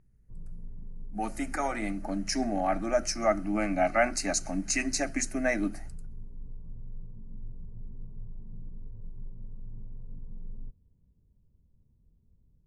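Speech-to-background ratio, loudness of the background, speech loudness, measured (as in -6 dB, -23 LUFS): 19.0 dB, -48.5 LUFS, -29.5 LUFS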